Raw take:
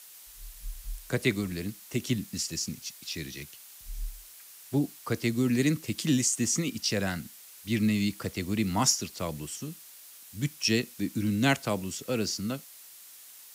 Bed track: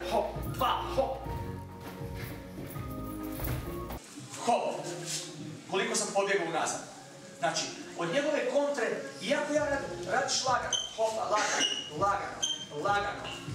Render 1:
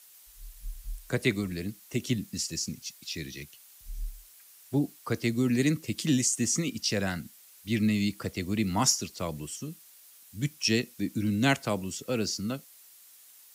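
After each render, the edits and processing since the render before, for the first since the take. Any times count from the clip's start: noise reduction 6 dB, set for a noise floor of -50 dBFS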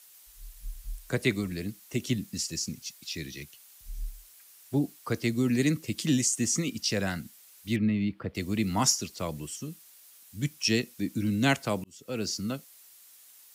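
7.76–8.35 s: distance through air 440 m; 11.84–12.33 s: fade in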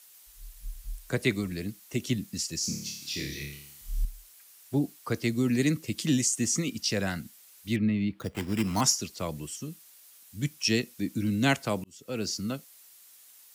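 2.59–4.05 s: flutter echo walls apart 4.8 m, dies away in 0.68 s; 8.19–8.81 s: sample-rate reducer 5.2 kHz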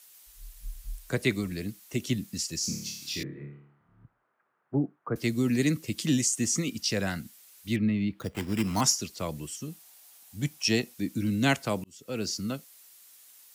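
3.23–5.16 s: elliptic band-pass 120–1400 Hz, stop band 60 dB; 9.68–10.94 s: peaking EQ 770 Hz +9.5 dB 0.52 oct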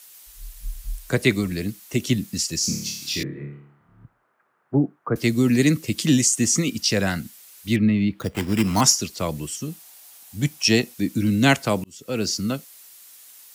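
trim +7.5 dB

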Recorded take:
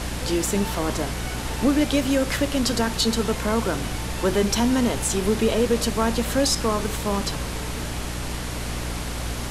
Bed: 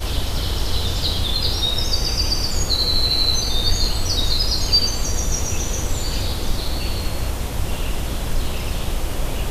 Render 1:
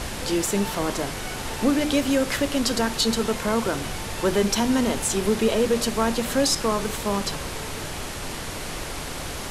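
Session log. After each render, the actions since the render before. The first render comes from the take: hum notches 60/120/180/240/300 Hz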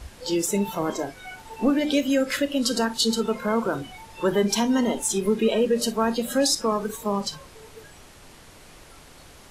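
noise print and reduce 16 dB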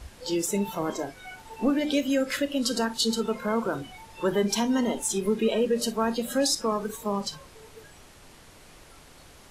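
trim -3 dB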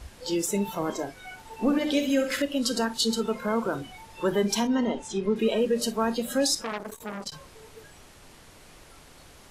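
1.60–2.42 s: flutter echo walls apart 11.3 m, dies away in 0.52 s; 4.67–5.36 s: distance through air 130 m; 6.62–7.32 s: transformer saturation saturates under 1.9 kHz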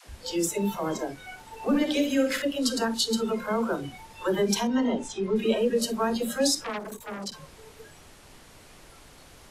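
phase dispersion lows, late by 81 ms, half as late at 340 Hz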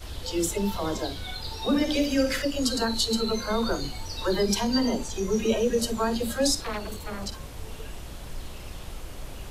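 add bed -15.5 dB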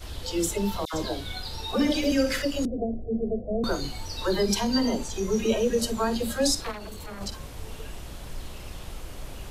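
0.85–2.12 s: phase dispersion lows, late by 85 ms, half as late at 1.6 kHz; 2.65–3.64 s: Chebyshev low-pass 740 Hz, order 8; 6.71–7.21 s: compression 4:1, threshold -34 dBFS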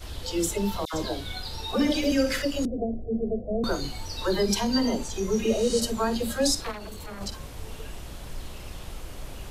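5.48–5.78 s: spectral replace 920–10000 Hz both

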